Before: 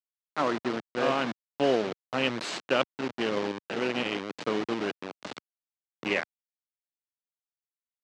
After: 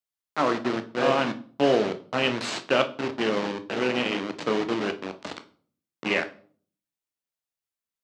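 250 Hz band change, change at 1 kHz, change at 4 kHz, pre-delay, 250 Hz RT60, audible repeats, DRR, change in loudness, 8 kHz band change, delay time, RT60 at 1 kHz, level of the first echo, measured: +4.0 dB, +3.5 dB, +3.5 dB, 13 ms, 0.60 s, none, 8.0 dB, +3.5 dB, +3.5 dB, none, 0.45 s, none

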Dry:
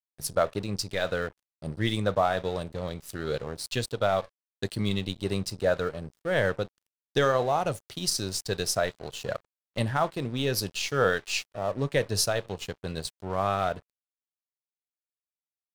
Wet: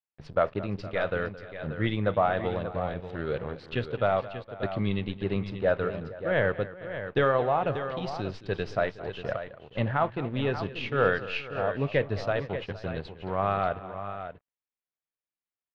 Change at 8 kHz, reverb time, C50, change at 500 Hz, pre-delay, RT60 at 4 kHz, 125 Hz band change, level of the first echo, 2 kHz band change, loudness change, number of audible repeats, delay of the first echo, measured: under -25 dB, none, none, +0.5 dB, none, none, +0.5 dB, -16.5 dB, +0.5 dB, -0.5 dB, 3, 0.219 s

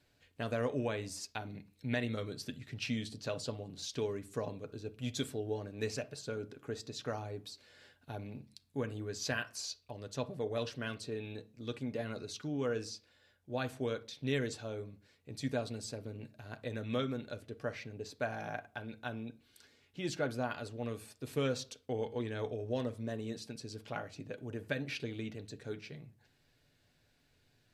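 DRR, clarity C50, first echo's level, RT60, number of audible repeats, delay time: 7.5 dB, 19.0 dB, none, 0.40 s, none, none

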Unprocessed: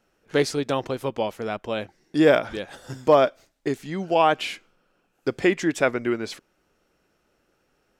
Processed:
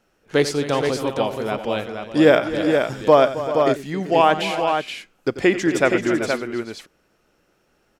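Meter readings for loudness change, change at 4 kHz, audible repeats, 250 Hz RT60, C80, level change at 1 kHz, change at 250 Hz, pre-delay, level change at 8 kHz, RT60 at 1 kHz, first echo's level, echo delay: +4.0 dB, +4.5 dB, 4, none, none, +4.5 dB, +4.5 dB, none, +4.5 dB, none, -14.0 dB, 90 ms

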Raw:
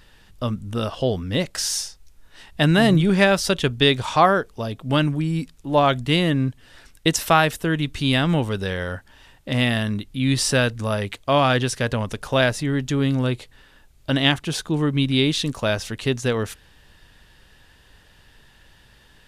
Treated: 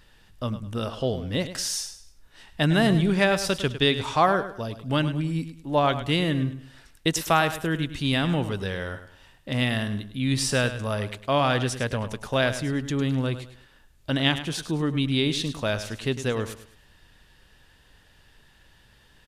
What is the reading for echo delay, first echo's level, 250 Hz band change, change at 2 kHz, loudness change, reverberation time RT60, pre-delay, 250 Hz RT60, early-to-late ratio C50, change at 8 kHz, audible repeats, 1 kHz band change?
0.104 s, -12.0 dB, -4.0 dB, -4.0 dB, -4.0 dB, none, none, none, none, -4.0 dB, 3, -4.0 dB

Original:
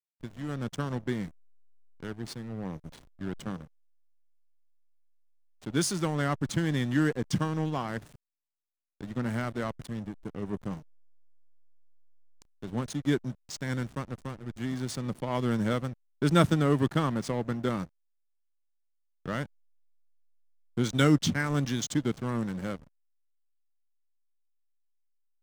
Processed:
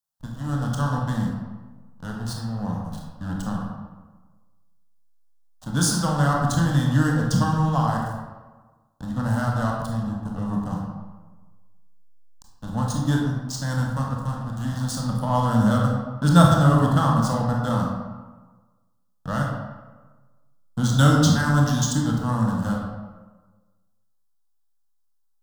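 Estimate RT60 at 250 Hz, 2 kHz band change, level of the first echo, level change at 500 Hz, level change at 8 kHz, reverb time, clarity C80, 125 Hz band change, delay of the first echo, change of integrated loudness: 1.3 s, +5.5 dB, none, +3.5 dB, +8.5 dB, 1.3 s, 3.5 dB, +10.5 dB, none, +8.0 dB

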